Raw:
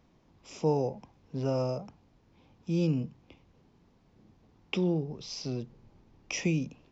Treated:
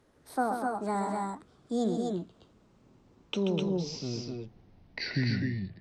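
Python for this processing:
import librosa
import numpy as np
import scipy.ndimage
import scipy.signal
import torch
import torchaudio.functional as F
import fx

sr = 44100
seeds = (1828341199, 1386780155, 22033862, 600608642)

y = fx.speed_glide(x, sr, from_pct=173, to_pct=65)
y = fx.echo_multitap(y, sr, ms=(133, 245, 256), db=(-7.0, -10.5, -3.5))
y = y * librosa.db_to_amplitude(-1.5)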